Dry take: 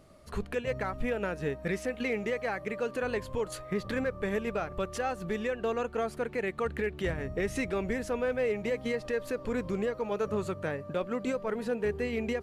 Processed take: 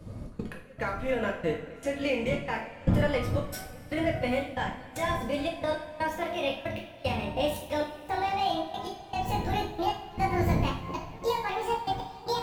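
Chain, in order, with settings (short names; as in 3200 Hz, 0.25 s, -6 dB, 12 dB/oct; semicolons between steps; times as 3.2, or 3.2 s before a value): gliding pitch shift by +11.5 st starting unshifted; wind noise 170 Hz -38 dBFS; step gate "xx.x..xx" 115 bpm -24 dB; two-slope reverb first 0.46 s, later 3.8 s, from -20 dB, DRR -1.5 dB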